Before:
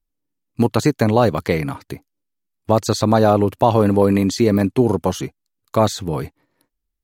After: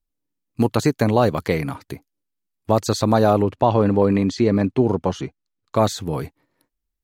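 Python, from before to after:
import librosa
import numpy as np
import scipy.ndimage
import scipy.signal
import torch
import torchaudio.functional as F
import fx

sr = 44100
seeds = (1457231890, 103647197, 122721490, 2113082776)

y = fx.air_absorb(x, sr, metres=100.0, at=(3.42, 5.76))
y = y * librosa.db_to_amplitude(-2.0)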